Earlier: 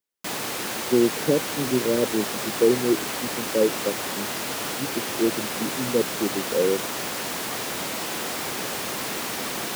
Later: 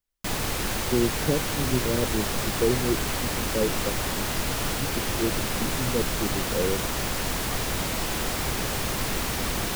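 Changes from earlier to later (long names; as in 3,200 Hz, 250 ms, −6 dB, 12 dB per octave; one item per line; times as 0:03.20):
speech −6.0 dB
master: remove high-pass filter 230 Hz 12 dB per octave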